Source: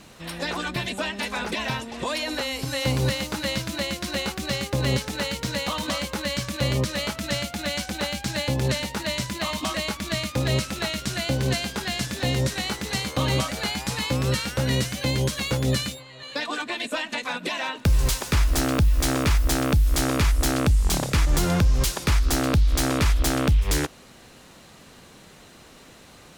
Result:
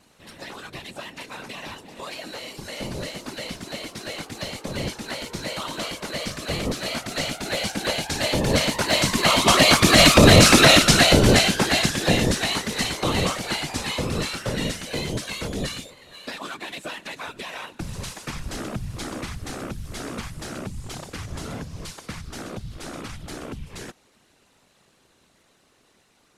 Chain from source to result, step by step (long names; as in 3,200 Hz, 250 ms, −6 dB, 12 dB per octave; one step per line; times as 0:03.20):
variable-slope delta modulation 64 kbit/s
source passing by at 0:10.34, 6 m/s, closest 1.5 metres
parametric band 70 Hz −12.5 dB 1.1 octaves
random phases in short frames
boost into a limiter +24 dB
level −1 dB